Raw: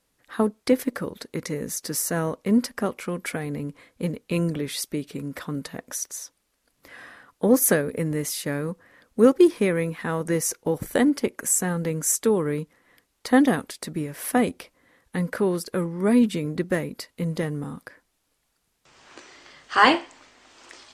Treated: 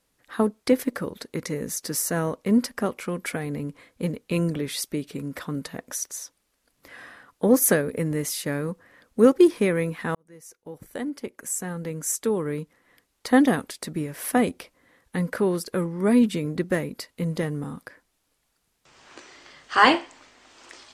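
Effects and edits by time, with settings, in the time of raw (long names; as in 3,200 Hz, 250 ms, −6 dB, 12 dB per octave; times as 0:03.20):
0:10.15–0:13.36: fade in linear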